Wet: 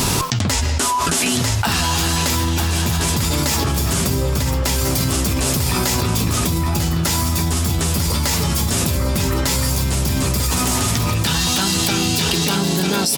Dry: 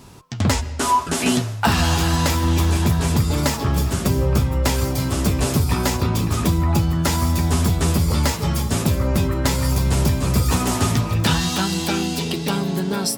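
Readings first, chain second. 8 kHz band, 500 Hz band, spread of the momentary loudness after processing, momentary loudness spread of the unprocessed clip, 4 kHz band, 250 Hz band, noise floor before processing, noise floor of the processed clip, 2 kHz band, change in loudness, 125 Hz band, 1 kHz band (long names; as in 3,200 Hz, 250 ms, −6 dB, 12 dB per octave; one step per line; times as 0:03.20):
+7.0 dB, +0.5 dB, 2 LU, 3 LU, +6.0 dB, 0.0 dB, −28 dBFS, −19 dBFS, +3.0 dB, +2.0 dB, −0.5 dB, +0.5 dB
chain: high-shelf EQ 2,200 Hz +8.5 dB
single-tap delay 946 ms −9 dB
envelope flattener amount 100%
level −6 dB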